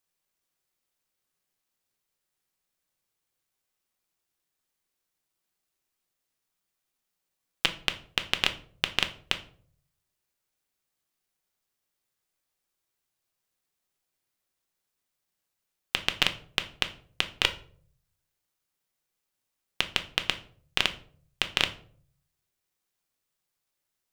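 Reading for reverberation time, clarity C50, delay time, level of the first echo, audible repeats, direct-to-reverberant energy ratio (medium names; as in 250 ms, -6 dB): 0.55 s, 14.5 dB, no echo, no echo, no echo, 7.0 dB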